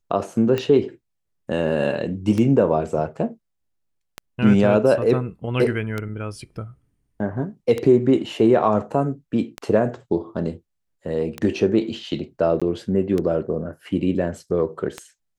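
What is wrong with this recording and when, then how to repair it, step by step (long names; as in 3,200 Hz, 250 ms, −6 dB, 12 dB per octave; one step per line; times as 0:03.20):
scratch tick 33 1/3 rpm −12 dBFS
0:12.60–0:12.62: drop-out 16 ms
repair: click removal
repair the gap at 0:12.60, 16 ms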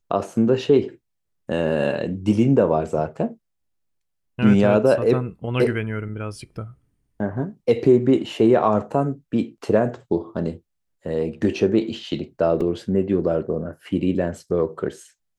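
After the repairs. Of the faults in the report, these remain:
none of them is left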